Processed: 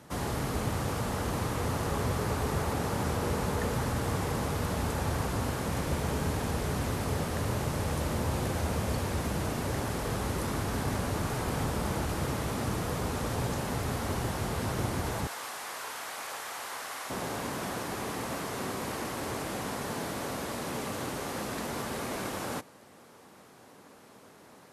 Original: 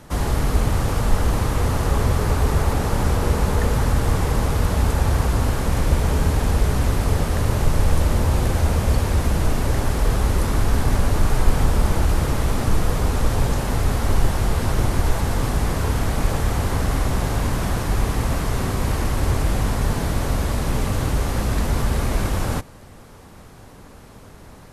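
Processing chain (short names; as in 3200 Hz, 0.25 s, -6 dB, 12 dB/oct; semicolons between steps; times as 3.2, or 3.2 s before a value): HPF 110 Hz 12 dB/oct, from 15.27 s 900 Hz, from 17.1 s 230 Hz; gain -7 dB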